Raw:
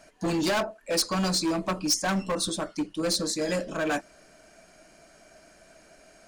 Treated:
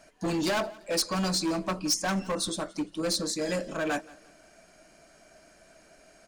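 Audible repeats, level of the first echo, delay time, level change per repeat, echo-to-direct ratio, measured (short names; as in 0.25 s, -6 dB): 2, -22.0 dB, 0.172 s, -9.0 dB, -21.5 dB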